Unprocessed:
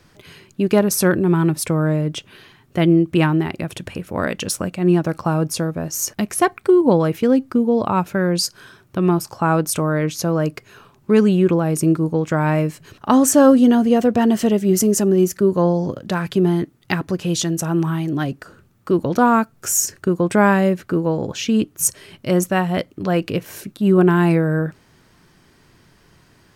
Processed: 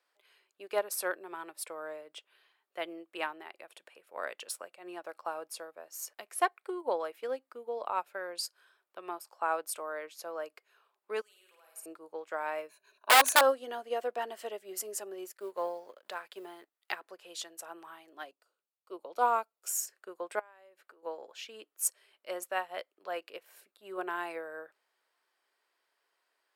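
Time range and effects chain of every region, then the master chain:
11.21–11.86 s: differentiator + compression 1.5:1, threshold -32 dBFS + flutter echo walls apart 8.9 m, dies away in 0.92 s
12.69–13.41 s: rippled EQ curve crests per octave 1.5, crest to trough 15 dB + integer overflow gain 5.5 dB
15.25–16.96 s: companding laws mixed up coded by A + tape noise reduction on one side only encoder only
18.31–19.70 s: peaking EQ 1.7 kHz -11.5 dB 0.42 oct + three bands expanded up and down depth 40%
20.39–21.03 s: high-pass 220 Hz + compression 10:1, threshold -28 dBFS
whole clip: high-pass 510 Hz 24 dB/octave; peaking EQ 6.1 kHz -8 dB 0.34 oct; upward expansion 1.5:1, over -38 dBFS; trim -7 dB

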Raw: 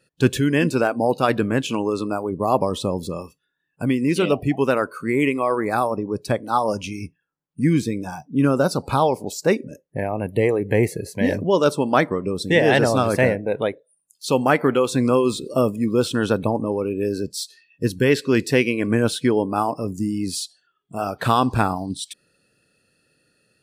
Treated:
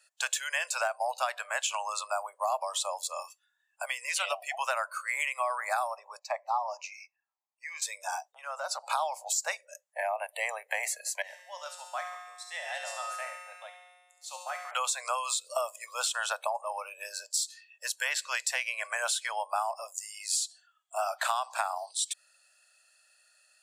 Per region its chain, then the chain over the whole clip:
6.19–7.82 s: tilt EQ -4 dB/octave + static phaser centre 2.2 kHz, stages 8
8.32–8.90 s: low-pass 3.1 kHz 6 dB/octave + compression, threshold -23 dBFS
11.22–14.71 s: feedback comb 180 Hz, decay 1.5 s, mix 90% + feedback echo behind a high-pass 70 ms, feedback 54%, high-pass 2 kHz, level -7 dB
whole clip: steep high-pass 620 Hz 72 dB/octave; peaking EQ 7.3 kHz +11.5 dB 0.52 oct; compression 6:1, threshold -27 dBFS

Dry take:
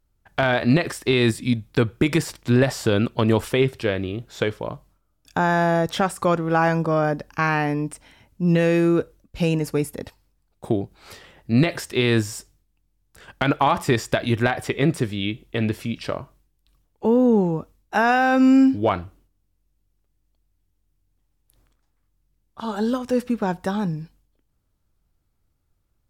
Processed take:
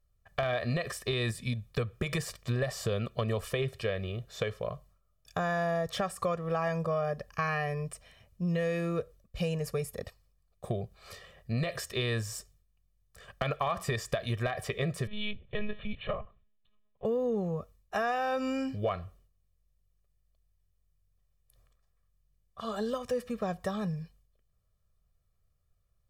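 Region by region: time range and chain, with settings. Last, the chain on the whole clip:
15.07–17.05 s: hum notches 50/100 Hz + monotone LPC vocoder at 8 kHz 210 Hz
whole clip: comb 1.7 ms, depth 95%; compression 3:1, threshold -20 dBFS; trim -8.5 dB

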